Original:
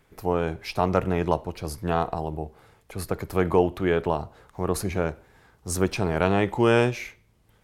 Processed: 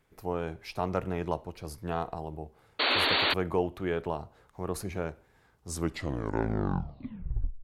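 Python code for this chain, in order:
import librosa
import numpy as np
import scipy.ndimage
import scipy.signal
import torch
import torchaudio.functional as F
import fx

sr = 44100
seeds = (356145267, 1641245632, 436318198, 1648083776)

y = fx.tape_stop_end(x, sr, length_s=2.02)
y = fx.spec_paint(y, sr, seeds[0], shape='noise', start_s=2.79, length_s=0.55, low_hz=240.0, high_hz=4600.0, level_db=-18.0)
y = F.gain(torch.from_numpy(y), -8.0).numpy()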